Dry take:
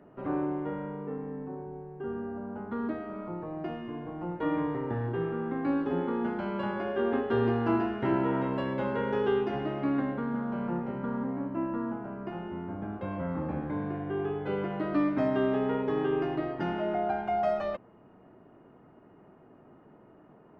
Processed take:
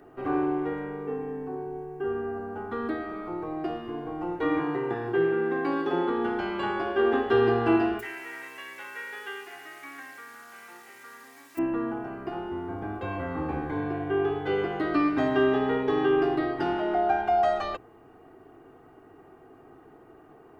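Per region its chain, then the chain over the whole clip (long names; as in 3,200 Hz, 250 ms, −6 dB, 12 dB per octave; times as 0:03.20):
0:04.59–0:06.10: high-pass filter 140 Hz + comb filter 5.6 ms, depth 57%
0:07.99–0:11.57: background noise violet −44 dBFS + resonant band-pass 2,100 Hz, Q 2.9
whole clip: high-shelf EQ 2,800 Hz +10 dB; mains-hum notches 60/120/180/240/300/360/420 Hz; comb filter 2.6 ms, depth 67%; level +2.5 dB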